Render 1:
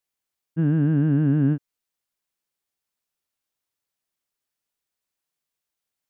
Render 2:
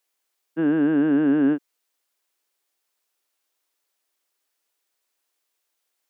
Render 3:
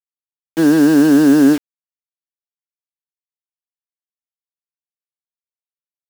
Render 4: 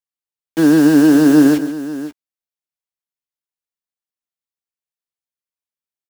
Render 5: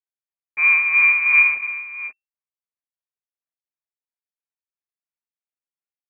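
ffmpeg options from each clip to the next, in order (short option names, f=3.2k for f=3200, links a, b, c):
-af "highpass=f=300:w=0.5412,highpass=f=300:w=1.3066,volume=8dB"
-af "acrusher=bits=5:mix=0:aa=0.000001,volume=9dB"
-filter_complex "[0:a]asplit=2[a][b];[b]adelay=13,volume=-14dB[c];[a][c]amix=inputs=2:normalize=0,aecho=1:1:138|532:0.2|0.188"
-af "tremolo=f=2.9:d=0.55,lowpass=f=2.3k:t=q:w=0.5098,lowpass=f=2.3k:t=q:w=0.6013,lowpass=f=2.3k:t=q:w=0.9,lowpass=f=2.3k:t=q:w=2.563,afreqshift=-2700,volume=-4dB"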